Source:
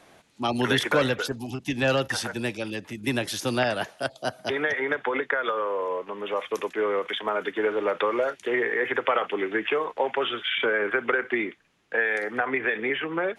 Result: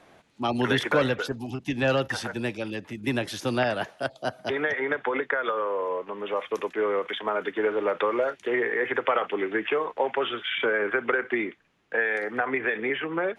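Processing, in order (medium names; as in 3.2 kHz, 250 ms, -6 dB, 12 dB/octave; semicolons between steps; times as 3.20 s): treble shelf 4.5 kHz -9 dB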